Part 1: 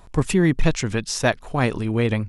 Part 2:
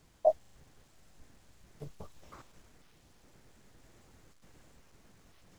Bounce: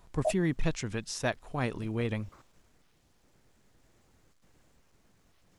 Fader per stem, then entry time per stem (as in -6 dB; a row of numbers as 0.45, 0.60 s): -11.0, -5.0 dB; 0.00, 0.00 s